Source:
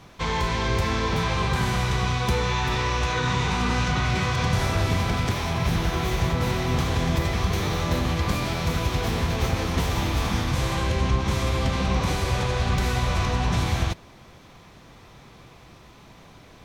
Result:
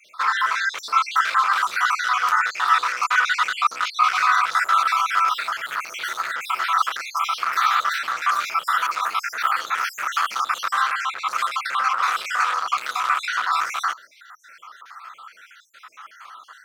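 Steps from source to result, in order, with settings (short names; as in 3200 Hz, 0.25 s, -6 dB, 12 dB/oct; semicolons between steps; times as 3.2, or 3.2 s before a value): random spectral dropouts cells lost 57%; overloaded stage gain 26.5 dB; resonant high-pass 1300 Hz, resonance Q 9.1; gain +5 dB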